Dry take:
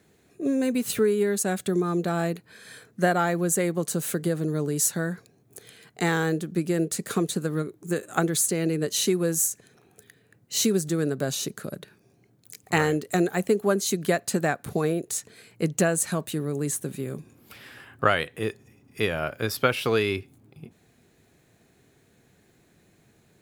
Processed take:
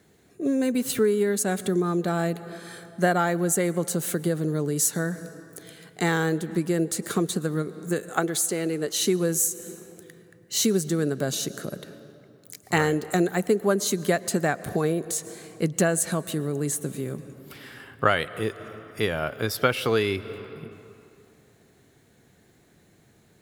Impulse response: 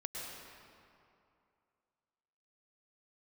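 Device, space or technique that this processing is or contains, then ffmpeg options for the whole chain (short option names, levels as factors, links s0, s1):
ducked reverb: -filter_complex "[0:a]asplit=3[s0][s1][s2];[1:a]atrim=start_sample=2205[s3];[s1][s3]afir=irnorm=-1:irlink=0[s4];[s2]apad=whole_len=1032581[s5];[s4][s5]sidechaincompress=threshold=0.0251:ratio=4:attack=6.4:release=209,volume=0.355[s6];[s0][s6]amix=inputs=2:normalize=0,bandreject=f=2500:w=15,asettb=1/sr,asplit=3[s7][s8][s9];[s7]atrim=end=8.094[s10];[s8]atrim=start=8.09:end=9.01,asetpts=PTS-STARTPTS,afade=t=in:d=0.004:c=qsin,afade=t=out:st=0.916:d=0.004:c=qsin,bass=f=250:g=-8,treble=f=4000:g=-2[s11];[s9]atrim=start=9.006[s12];[s10][s11]acrossfade=d=0.004:c1=hsin:c2=qsin[s13];[s13][s12]acrossfade=d=0.004:c1=qsin:c2=hsin"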